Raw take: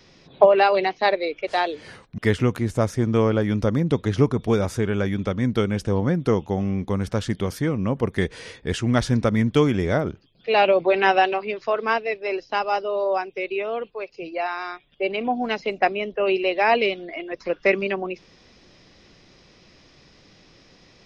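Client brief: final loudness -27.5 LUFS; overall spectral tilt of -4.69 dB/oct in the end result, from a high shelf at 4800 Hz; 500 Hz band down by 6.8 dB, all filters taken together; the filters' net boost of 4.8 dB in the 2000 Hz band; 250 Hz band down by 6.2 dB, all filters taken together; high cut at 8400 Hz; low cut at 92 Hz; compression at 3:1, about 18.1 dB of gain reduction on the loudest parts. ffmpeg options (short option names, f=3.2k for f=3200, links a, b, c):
-af "highpass=92,lowpass=8.4k,equalizer=f=250:t=o:g=-6,equalizer=f=500:t=o:g=-7.5,equalizer=f=2k:t=o:g=5,highshelf=f=4.8k:g=8,acompressor=threshold=-39dB:ratio=3,volume=11dB"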